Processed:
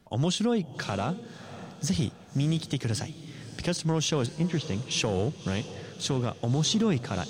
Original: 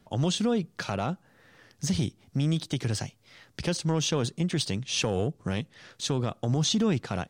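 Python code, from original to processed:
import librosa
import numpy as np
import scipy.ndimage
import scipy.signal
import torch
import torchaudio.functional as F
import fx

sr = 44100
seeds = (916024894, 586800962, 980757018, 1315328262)

y = fx.lowpass(x, sr, hz=2400.0, slope=12, at=(4.26, 4.91))
y = fx.echo_diffused(y, sr, ms=590, feedback_pct=47, wet_db=-14)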